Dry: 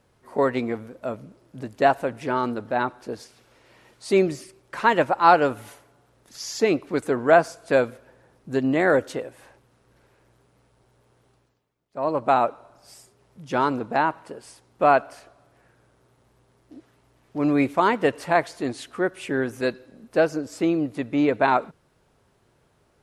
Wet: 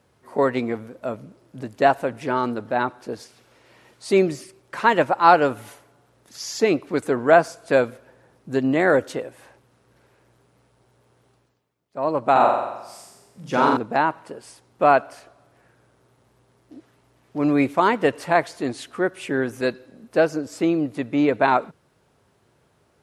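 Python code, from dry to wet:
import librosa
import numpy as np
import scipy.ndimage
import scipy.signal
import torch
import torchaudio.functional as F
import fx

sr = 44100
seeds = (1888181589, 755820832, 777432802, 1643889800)

y = scipy.signal.sosfilt(scipy.signal.butter(2, 66.0, 'highpass', fs=sr, output='sos'), x)
y = fx.room_flutter(y, sr, wall_m=7.6, rt60_s=0.96, at=(12.31, 13.77))
y = y * 10.0 ** (1.5 / 20.0)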